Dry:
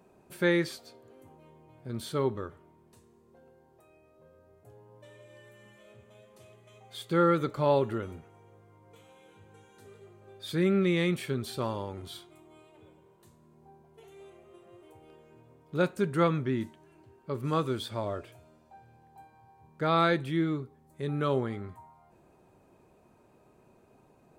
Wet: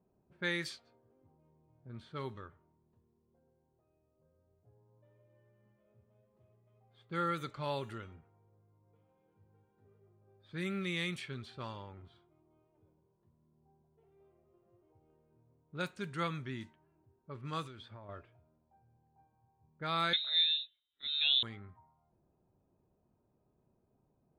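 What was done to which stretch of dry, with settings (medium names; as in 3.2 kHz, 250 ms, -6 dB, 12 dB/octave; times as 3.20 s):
17.65–18.09 s: compression, threshold -34 dBFS
20.13–21.43 s: frequency inversion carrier 3.9 kHz
whole clip: level-controlled noise filter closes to 560 Hz, open at -23 dBFS; amplifier tone stack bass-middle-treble 5-5-5; trim +5.5 dB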